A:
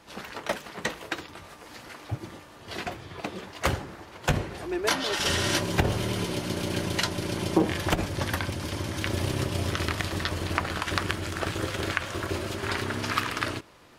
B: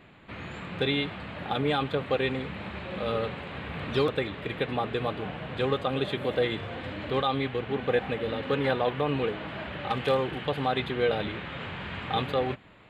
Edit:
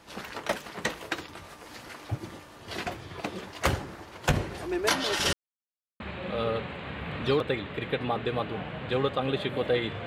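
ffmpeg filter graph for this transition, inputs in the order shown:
-filter_complex "[0:a]apad=whole_dur=10.06,atrim=end=10.06,asplit=2[a][b];[a]atrim=end=5.33,asetpts=PTS-STARTPTS,afade=t=out:st=5.326:d=0.004:c=hsin[c];[b]atrim=start=5.33:end=6,asetpts=PTS-STARTPTS,volume=0[d];[1:a]atrim=start=2.68:end=6.74,asetpts=PTS-STARTPTS,afade=t=in:d=0.004:c=hsin[e];[c][d][e]concat=n=3:v=0:a=1"

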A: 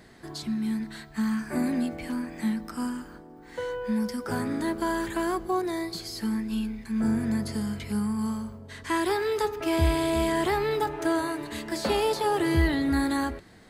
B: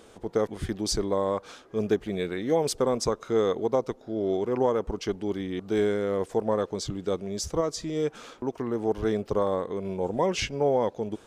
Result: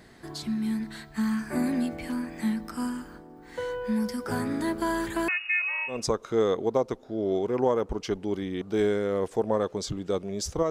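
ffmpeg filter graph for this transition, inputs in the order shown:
-filter_complex "[0:a]asettb=1/sr,asplit=3[a][b][c];[a]atrim=end=5.284[d];[b]atrim=start=5.28:end=6.06,asetpts=PTS-STARTPTS,afade=t=in:d=0.004:c=qsin,afade=t=out:st=0.776:d=0.004:c=qsin,lowpass=f=2.5k:t=q:w=0.5098,lowpass=f=2.5k:t=q:w=0.6013,lowpass=f=2.5k:t=q:w=0.9,lowpass=f=2.5k:t=q:w=2.563,afreqshift=-2900[e];[c]atrim=start=6.056[f];[d][e]acrossfade=d=0.004:c1=hsin:c2=qsin[g];[g][f]acrossfade=d=0.004:c1=qsin:c2=hsin,apad=whole_dur=10.7,atrim=end=10.7,atrim=end=6.06,asetpts=PTS-STARTPTS[h];[1:a]atrim=start=2.84:end=7.68,asetpts=PTS-STARTPTS[i];[h][i]acrossfade=d=0.2:c1=tri:c2=tri"

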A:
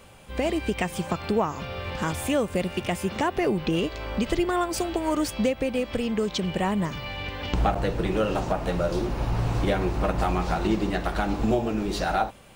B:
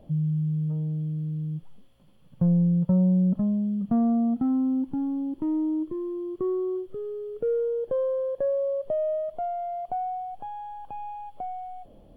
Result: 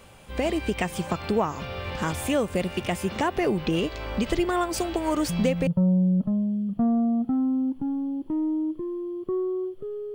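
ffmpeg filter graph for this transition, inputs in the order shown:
-filter_complex "[1:a]asplit=2[a][b];[0:a]apad=whole_dur=10.14,atrim=end=10.14,atrim=end=5.672[c];[b]atrim=start=2.788:end=7.26[d];[a]atrim=start=2.17:end=2.79,asetpts=PTS-STARTPTS,volume=-8dB,afade=t=in:d=0.004:c=hsin,afade=t=out:st=0.616:d=0.004:c=hsin,adelay=222705S[e];[c][d]acrossfade=d=0.004:c1=hsin:c2=hsin[f];[f][e]amix=inputs=2:normalize=0"

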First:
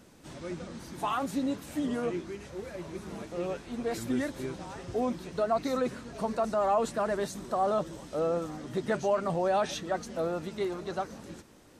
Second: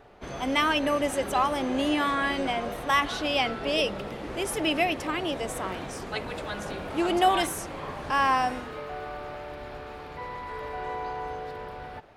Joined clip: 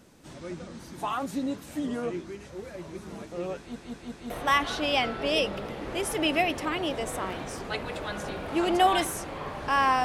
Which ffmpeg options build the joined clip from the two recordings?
-filter_complex "[0:a]apad=whole_dur=10.04,atrim=end=10.04,asplit=4[a][b][c][d];[a]atrim=end=3.762[e];[b]atrim=start=3.578:end=3.762[f];[c]atrim=start=3.578:end=3.762[g];[d]atrim=start=3.578:end=3.762[h];[1:a]atrim=start=2.718:end=8.46[i];[e][f]acrossfade=d=0.004:c1=hsin:c2=hsin[j];[j][g]acrossfade=d=0.004:c1=hsin:c2=hsin[k];[k][h]acrossfade=d=0.004:c1=hsin:c2=hsin[l];[l][i]acrossfade=d=0.004:c1=hsin:c2=hsin"

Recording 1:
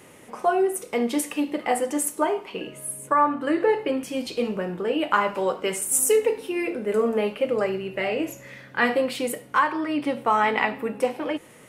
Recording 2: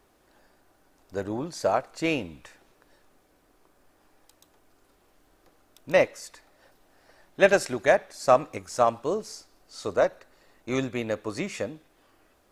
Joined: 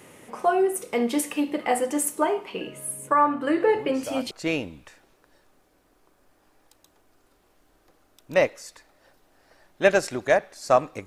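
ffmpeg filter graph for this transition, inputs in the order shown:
-filter_complex "[1:a]asplit=2[a][b];[0:a]apad=whole_dur=11.06,atrim=end=11.06,atrim=end=4.312[c];[b]atrim=start=1.888:end=8.64[d];[a]atrim=start=1.32:end=1.89,asetpts=PTS-STARTPTS,volume=-10dB,afade=t=in:d=0.004:c=hsin,afade=t=out:st=0.566:d=0.004:c=hsin,adelay=3740[e];[c][d]acrossfade=d=0.004:c1=hsin:c2=hsin[f];[f][e]amix=inputs=2:normalize=0"

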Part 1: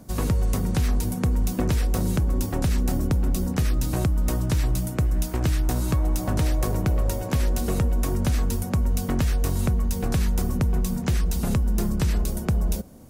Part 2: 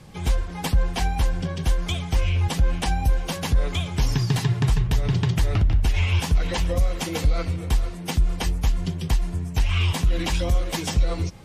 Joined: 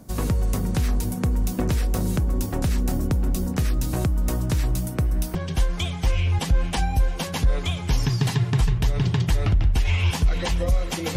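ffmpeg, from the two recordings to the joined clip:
-filter_complex "[0:a]asettb=1/sr,asplit=3[a][b][c];[a]atrim=end=4.894[d];[b]atrim=start=4.89:end=5.35,asetpts=PTS-STARTPTS,afade=t=in:d=0.004:c=qsin,afade=t=out:st=0.456:d=0.004:c=qsin,bandreject=f=7k:w=8.3[e];[c]atrim=start=5.346[f];[d][e]acrossfade=d=0.004:c1=hsin:c2=qsin[g];[g][f]acrossfade=d=0.004:c1=qsin:c2=hsin,apad=whole_dur=11.16,atrim=end=11.16,atrim=end=5.352[h];[1:a]atrim=start=1.438:end=7.25[i];[h][i]acrossfade=d=0.004:c1=hsin:c2=hsin"

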